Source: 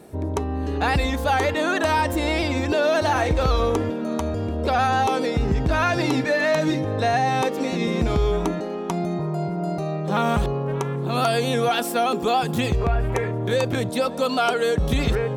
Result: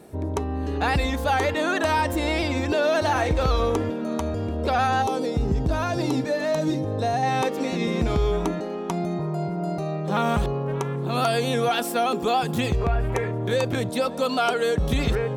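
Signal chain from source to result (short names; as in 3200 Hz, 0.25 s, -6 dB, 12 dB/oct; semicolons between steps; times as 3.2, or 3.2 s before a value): 5.02–7.23 bell 2000 Hz -9.5 dB 1.6 oct; gain -1.5 dB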